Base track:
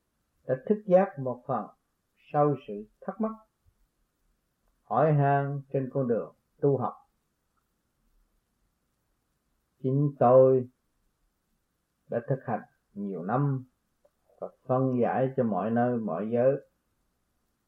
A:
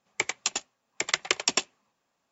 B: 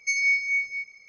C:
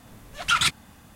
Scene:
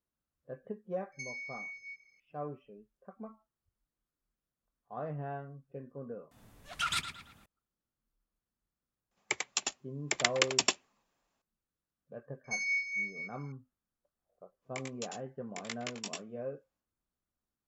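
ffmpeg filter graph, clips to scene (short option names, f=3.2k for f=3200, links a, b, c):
-filter_complex "[2:a]asplit=2[a][b];[1:a]asplit=2[c][d];[0:a]volume=-16dB[e];[a]acompressor=threshold=-30dB:ratio=6:attack=37:release=59:knee=1:detection=peak[f];[3:a]asplit=2[g][h];[h]adelay=112,lowpass=f=4.4k:p=1,volume=-9dB,asplit=2[i][j];[j]adelay=112,lowpass=f=4.4k:p=1,volume=0.43,asplit=2[k][l];[l]adelay=112,lowpass=f=4.4k:p=1,volume=0.43,asplit=2[m][n];[n]adelay=112,lowpass=f=4.4k:p=1,volume=0.43,asplit=2[o][p];[p]adelay=112,lowpass=f=4.4k:p=1,volume=0.43[q];[g][i][k][m][o][q]amix=inputs=6:normalize=0[r];[c]dynaudnorm=f=230:g=5:m=4.5dB[s];[d]flanger=delay=16.5:depth=4.6:speed=2.4[t];[e]asplit=2[u][v];[u]atrim=end=6.314[w];[r]atrim=end=1.15,asetpts=PTS-STARTPTS,volume=-12dB[x];[v]atrim=start=7.456[y];[f]atrim=end=1.08,asetpts=PTS-STARTPTS,volume=-14.5dB,afade=t=in:d=0.004:c=hsin,afade=t=out:st=1.076:d=0.004:c=hsin,adelay=1120[z];[s]atrim=end=2.31,asetpts=PTS-STARTPTS,volume=-5.5dB,afade=t=in:d=0.004:c=hsin,afade=t=out:st=2.306:d=0.004:c=hsin,adelay=9110[aa];[b]atrim=end=1.08,asetpts=PTS-STARTPTS,volume=-10dB,afade=t=in:d=0.004:c=hsin,afade=t=out:st=1.076:d=0.004:c=hsin,adelay=12440[ab];[t]atrim=end=2.31,asetpts=PTS-STARTPTS,volume=-12.5dB,afade=t=in:d=0.1,afade=t=out:st=2.21:d=0.1,adelay=14560[ac];[w][x]acrossfade=d=0.004:c1=hsin:c2=hsin[ad];[ad][y]acrossfade=d=0.004:c1=hsin:c2=hsin[ae];[ae][z][aa][ab][ac]amix=inputs=5:normalize=0"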